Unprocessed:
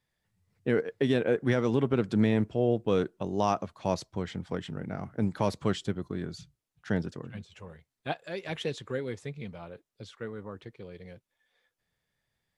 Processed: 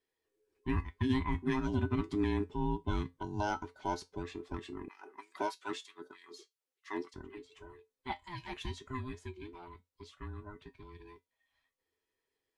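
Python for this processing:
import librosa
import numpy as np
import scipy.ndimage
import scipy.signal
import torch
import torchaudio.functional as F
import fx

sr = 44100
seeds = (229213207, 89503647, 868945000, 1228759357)

y = fx.band_invert(x, sr, width_hz=500)
y = fx.comb_fb(y, sr, f0_hz=88.0, decay_s=0.17, harmonics='odd', damping=0.0, mix_pct=70)
y = fx.filter_lfo_highpass(y, sr, shape='sine', hz=3.2, low_hz=290.0, high_hz=2800.0, q=1.0, at=(4.88, 7.14))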